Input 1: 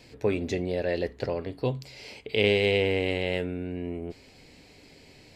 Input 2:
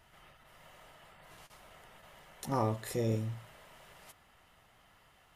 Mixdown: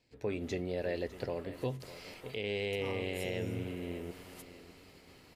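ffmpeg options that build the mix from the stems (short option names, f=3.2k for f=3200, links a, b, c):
-filter_complex "[0:a]volume=-7dB,asplit=3[a][b][c];[b]volume=-15dB[d];[1:a]highshelf=f=6k:g=6,adelay=300,volume=-0.5dB[e];[c]apad=whole_len=249529[f];[e][f]sidechaincompress=threshold=-38dB:ratio=8:attack=29:release=253[g];[d]aecho=0:1:603|1206|1809|2412|3015:1|0.35|0.122|0.0429|0.015[h];[a][g][h]amix=inputs=3:normalize=0,agate=range=-14dB:threshold=-57dB:ratio=16:detection=peak,alimiter=limit=-23dB:level=0:latency=1:release=192"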